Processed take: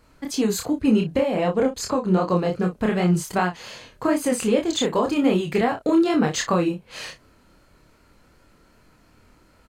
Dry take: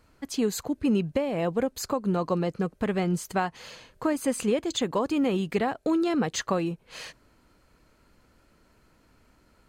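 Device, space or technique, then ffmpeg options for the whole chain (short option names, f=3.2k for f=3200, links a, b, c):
double-tracked vocal: -filter_complex "[0:a]asettb=1/sr,asplit=3[a][b][c];[a]atrim=end=1.364[d];[b]atrim=start=1.36:end=2.29,asetpts=PTS-STARTPTS,afade=t=in:d=0.004:c=qsin,afade=t=out:st=0.926:d=0.004:c=qsin,lowpass=9.1k[e];[c]atrim=start=2.286[f];[d][e]acrossfade=d=0.004:c1=hsin:c2=qsin[g];[g][f]acrossfade=d=0.004:c1=qsin:c2=hsin,asplit=2[h][i];[i]adelay=33,volume=-9dB[j];[h][j]amix=inputs=2:normalize=0,flanger=delay=22.5:depth=5.1:speed=2.6,volume=8dB"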